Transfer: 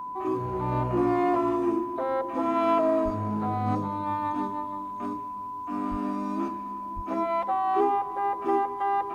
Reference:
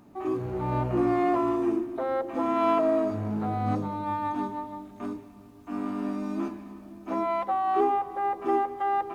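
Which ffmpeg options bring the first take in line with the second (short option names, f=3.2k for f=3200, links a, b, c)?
-filter_complex "[0:a]bandreject=f=1k:w=30,asplit=3[a][b][c];[a]afade=t=out:st=3.04:d=0.02[d];[b]highpass=f=140:w=0.5412,highpass=f=140:w=1.3066,afade=t=in:st=3.04:d=0.02,afade=t=out:st=3.16:d=0.02[e];[c]afade=t=in:st=3.16:d=0.02[f];[d][e][f]amix=inputs=3:normalize=0,asplit=3[g][h][i];[g]afade=t=out:st=5.9:d=0.02[j];[h]highpass=f=140:w=0.5412,highpass=f=140:w=1.3066,afade=t=in:st=5.9:d=0.02,afade=t=out:st=6.02:d=0.02[k];[i]afade=t=in:st=6.02:d=0.02[l];[j][k][l]amix=inputs=3:normalize=0,asplit=3[m][n][o];[m]afade=t=out:st=6.95:d=0.02[p];[n]highpass=f=140:w=0.5412,highpass=f=140:w=1.3066,afade=t=in:st=6.95:d=0.02,afade=t=out:st=7.07:d=0.02[q];[o]afade=t=in:st=7.07:d=0.02[r];[p][q][r]amix=inputs=3:normalize=0"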